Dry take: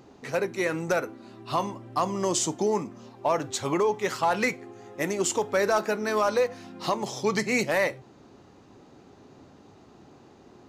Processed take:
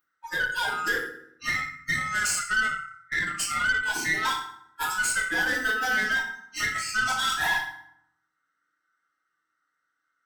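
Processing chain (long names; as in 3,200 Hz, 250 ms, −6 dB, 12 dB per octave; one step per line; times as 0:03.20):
neighbouring bands swapped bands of 1,000 Hz
RIAA equalisation recording
noise reduction from a noise print of the clip's start 30 dB
high-shelf EQ 3,200 Hz −9 dB
downward compressor 6 to 1, threshold −26 dBFS, peak gain reduction 7 dB
hard clipping −22.5 dBFS, distortion −23 dB
feedback delay network reverb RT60 0.73 s, low-frequency decay 1.4×, high-frequency decay 0.7×, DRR −6 dB
tube saturation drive 18 dB, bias 0.45
wrong playback speed 24 fps film run at 25 fps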